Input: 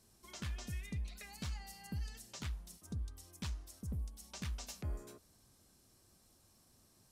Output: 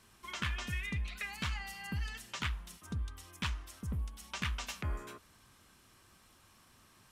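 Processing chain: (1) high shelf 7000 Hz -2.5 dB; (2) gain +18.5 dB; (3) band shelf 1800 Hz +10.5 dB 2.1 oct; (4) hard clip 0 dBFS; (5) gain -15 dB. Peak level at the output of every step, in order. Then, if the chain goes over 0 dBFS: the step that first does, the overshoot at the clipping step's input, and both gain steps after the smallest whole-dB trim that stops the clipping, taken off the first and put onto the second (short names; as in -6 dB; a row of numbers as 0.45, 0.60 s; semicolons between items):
-32.5, -14.0, -5.5, -5.5, -20.5 dBFS; no overload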